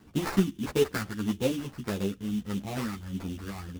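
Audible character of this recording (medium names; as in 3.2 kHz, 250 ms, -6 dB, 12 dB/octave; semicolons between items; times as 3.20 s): phasing stages 6, 1.6 Hz, lowest notch 560–1400 Hz; aliases and images of a low sample rate 3.2 kHz, jitter 20%; a shimmering, thickened sound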